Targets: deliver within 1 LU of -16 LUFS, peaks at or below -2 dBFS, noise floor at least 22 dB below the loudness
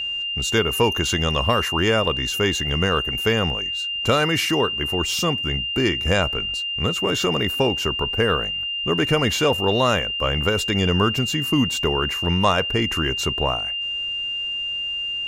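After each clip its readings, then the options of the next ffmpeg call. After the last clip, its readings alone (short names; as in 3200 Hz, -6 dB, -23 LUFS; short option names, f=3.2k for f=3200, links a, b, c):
steady tone 2800 Hz; tone level -24 dBFS; loudness -21.0 LUFS; peak -4.5 dBFS; loudness target -16.0 LUFS
-> -af "bandreject=f=2.8k:w=30"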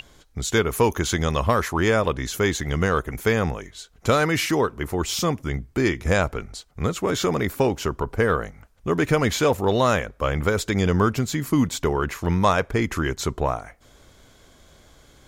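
steady tone none; loudness -23.0 LUFS; peak -4.0 dBFS; loudness target -16.0 LUFS
-> -af "volume=7dB,alimiter=limit=-2dB:level=0:latency=1"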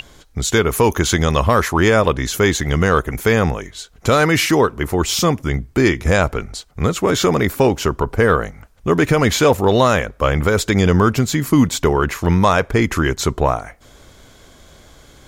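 loudness -16.5 LUFS; peak -2.0 dBFS; noise floor -48 dBFS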